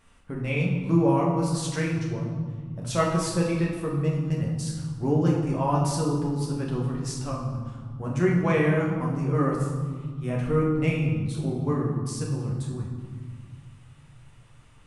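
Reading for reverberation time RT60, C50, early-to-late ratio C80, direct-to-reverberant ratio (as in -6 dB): 1.7 s, 3.0 dB, 5.0 dB, -3.5 dB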